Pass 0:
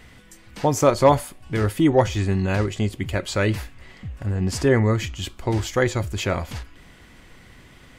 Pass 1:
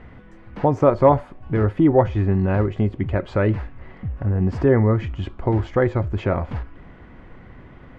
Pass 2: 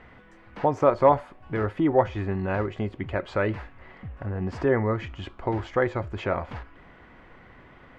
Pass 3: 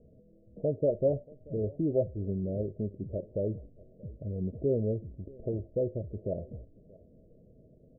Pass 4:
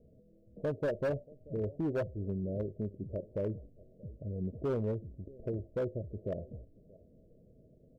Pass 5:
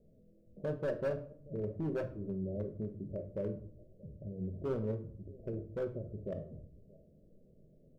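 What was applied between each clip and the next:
in parallel at 0 dB: compressor, threshold -27 dBFS, peak gain reduction 16.5 dB; on the sum: LPF 1300 Hz 12 dB/oct
low shelf 390 Hz -11.5 dB
rippled Chebyshev low-pass 650 Hz, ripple 6 dB; echo 0.632 s -23.5 dB; gain -2 dB
hard clip -25 dBFS, distortion -13 dB; gain -3 dB
shoebox room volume 640 m³, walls furnished, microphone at 1.1 m; gain -4 dB

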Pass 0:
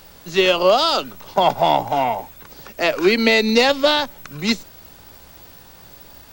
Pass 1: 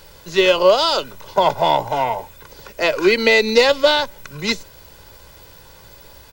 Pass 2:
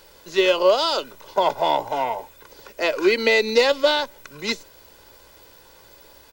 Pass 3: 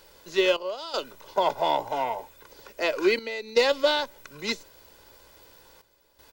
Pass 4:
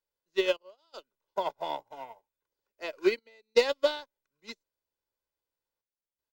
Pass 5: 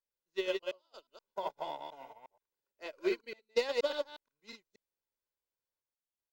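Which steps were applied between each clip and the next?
comb 2 ms, depth 50%
resonant low shelf 210 Hz -6.5 dB, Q 1.5; gain -4.5 dB
step gate "xxx..xxxxxxxxx" 80 bpm -12 dB; gain -4 dB
upward expander 2.5:1, over -42 dBFS
reverse delay 0.119 s, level -3 dB; gain -8 dB

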